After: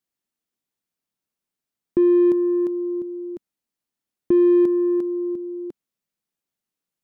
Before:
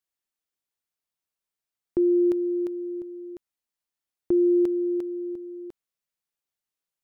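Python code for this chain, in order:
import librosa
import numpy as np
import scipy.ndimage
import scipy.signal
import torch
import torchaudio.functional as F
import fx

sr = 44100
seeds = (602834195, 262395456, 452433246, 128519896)

p1 = fx.peak_eq(x, sr, hz=220.0, db=10.5, octaves=1.6)
p2 = 10.0 ** (-22.5 / 20.0) * np.tanh(p1 / 10.0 ** (-22.5 / 20.0))
p3 = p1 + (p2 * 10.0 ** (-6.0 / 20.0))
y = p3 * 10.0 ** (-2.5 / 20.0)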